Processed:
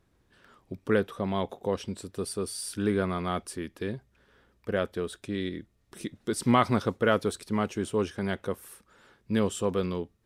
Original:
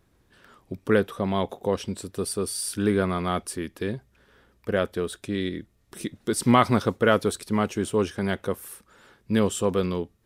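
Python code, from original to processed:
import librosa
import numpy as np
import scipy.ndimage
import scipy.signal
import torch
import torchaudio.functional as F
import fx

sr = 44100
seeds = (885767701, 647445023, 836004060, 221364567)

y = fx.high_shelf(x, sr, hz=12000.0, db=-8.0)
y = y * 10.0 ** (-4.0 / 20.0)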